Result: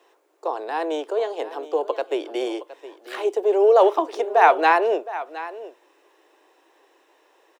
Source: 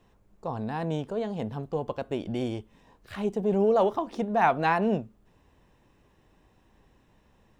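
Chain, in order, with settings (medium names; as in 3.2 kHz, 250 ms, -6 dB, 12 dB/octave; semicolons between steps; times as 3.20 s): steep high-pass 320 Hz 72 dB/octave; on a send: delay 716 ms -15.5 dB; on the sum: trim +8 dB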